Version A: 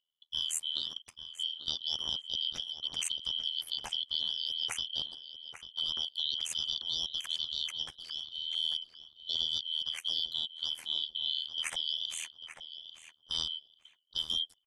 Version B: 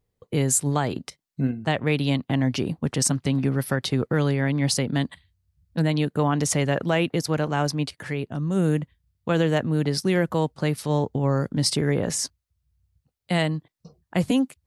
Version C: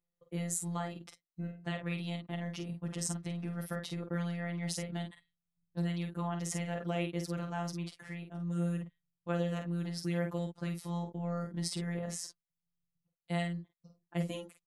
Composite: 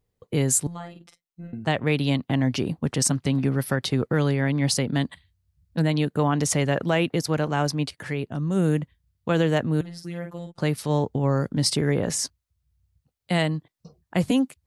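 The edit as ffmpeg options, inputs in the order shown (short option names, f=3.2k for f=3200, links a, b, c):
-filter_complex "[2:a]asplit=2[a][b];[1:a]asplit=3[c][d][e];[c]atrim=end=0.672[f];[a]atrim=start=0.668:end=1.532[g];[d]atrim=start=1.528:end=9.812[h];[b]atrim=start=9.808:end=10.582[i];[e]atrim=start=10.578[j];[f][g]acrossfade=d=0.004:c1=hsin:c2=hsin[k];[k][h]acrossfade=d=0.004:c1=hsin:c2=hsin[l];[l][i]acrossfade=d=0.004:c1=hsin:c2=hsin[m];[m][j]acrossfade=d=0.004:c1=hsin:c2=hsin"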